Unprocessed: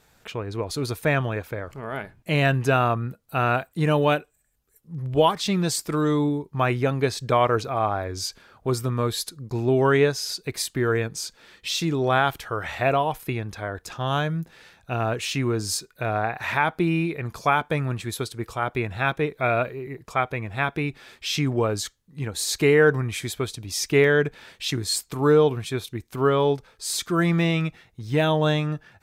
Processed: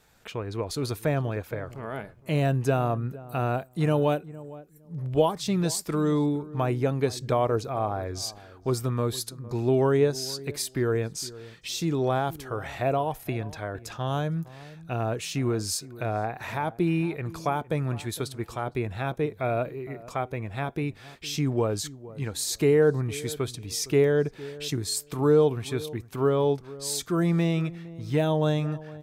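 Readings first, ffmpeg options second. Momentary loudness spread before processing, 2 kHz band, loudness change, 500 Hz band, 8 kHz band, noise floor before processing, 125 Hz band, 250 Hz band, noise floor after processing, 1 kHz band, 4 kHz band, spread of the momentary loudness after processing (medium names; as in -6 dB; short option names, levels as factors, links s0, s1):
12 LU, -10.5 dB, -3.5 dB, -2.5 dB, -2.5 dB, -62 dBFS, -2.0 dB, -2.0 dB, -51 dBFS, -6.0 dB, -5.5 dB, 11 LU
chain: -filter_complex "[0:a]acrossover=split=880|4900[s0][s1][s2];[s1]acompressor=threshold=0.0158:ratio=6[s3];[s0][s3][s2]amix=inputs=3:normalize=0,asplit=2[s4][s5];[s5]adelay=460,lowpass=f=970:p=1,volume=0.141,asplit=2[s6][s7];[s7]adelay=460,lowpass=f=970:p=1,volume=0.18[s8];[s4][s6][s8]amix=inputs=3:normalize=0,volume=0.794"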